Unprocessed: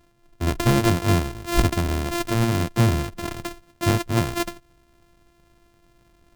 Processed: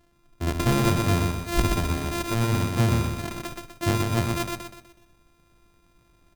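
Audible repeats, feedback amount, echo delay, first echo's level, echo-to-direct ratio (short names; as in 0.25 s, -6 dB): 5, 41%, 0.124 s, -3.5 dB, -2.5 dB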